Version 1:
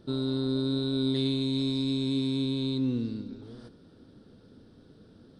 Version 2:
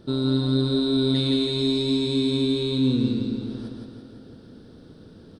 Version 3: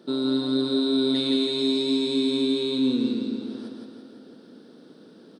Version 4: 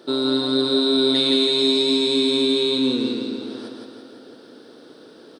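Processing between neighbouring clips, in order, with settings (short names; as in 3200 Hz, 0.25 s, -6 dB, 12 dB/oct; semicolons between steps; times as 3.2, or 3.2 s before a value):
feedback echo 0.167 s, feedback 57%, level -3.5 dB; gain +5.5 dB
HPF 210 Hz 24 dB/oct
bell 190 Hz -14.5 dB 0.95 oct; gain +8.5 dB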